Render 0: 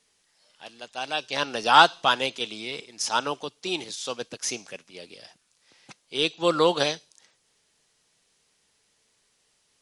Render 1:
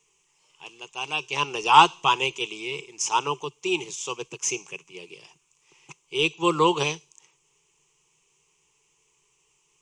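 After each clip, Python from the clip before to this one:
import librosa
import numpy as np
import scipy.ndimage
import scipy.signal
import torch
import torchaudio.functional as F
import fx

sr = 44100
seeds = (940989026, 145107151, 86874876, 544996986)

y = fx.ripple_eq(x, sr, per_octave=0.72, db=17)
y = y * 10.0 ** (-2.5 / 20.0)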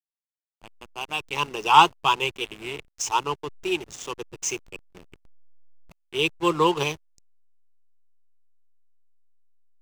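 y = fx.backlash(x, sr, play_db=-29.0)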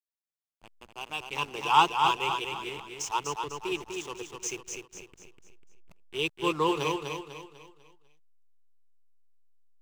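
y = fx.echo_feedback(x, sr, ms=248, feedback_pct=40, wet_db=-5)
y = y * 10.0 ** (-6.5 / 20.0)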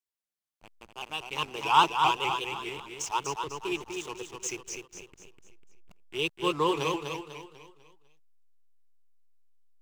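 y = fx.vibrato_shape(x, sr, shape='saw_up', rate_hz=4.9, depth_cents=100.0)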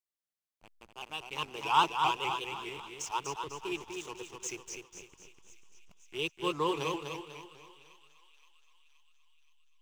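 y = fx.echo_thinned(x, sr, ms=522, feedback_pct=64, hz=1100.0, wet_db=-17.5)
y = y * 10.0 ** (-4.5 / 20.0)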